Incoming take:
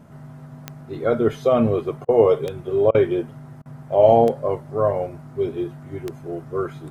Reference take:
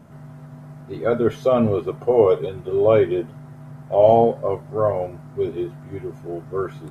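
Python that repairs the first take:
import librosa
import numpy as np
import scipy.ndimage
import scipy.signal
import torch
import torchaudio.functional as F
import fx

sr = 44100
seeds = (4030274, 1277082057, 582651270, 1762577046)

y = fx.fix_declick_ar(x, sr, threshold=10.0)
y = fx.fix_interpolate(y, sr, at_s=(2.05, 2.91, 3.62), length_ms=35.0)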